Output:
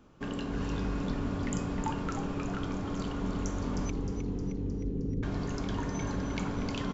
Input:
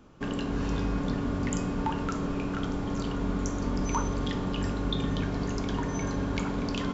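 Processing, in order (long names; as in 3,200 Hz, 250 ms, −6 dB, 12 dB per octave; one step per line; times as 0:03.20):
0:03.90–0:05.23: Chebyshev low-pass filter 520 Hz, order 8
echo with shifted repeats 310 ms, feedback 60%, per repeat −90 Hz, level −8 dB
level −4 dB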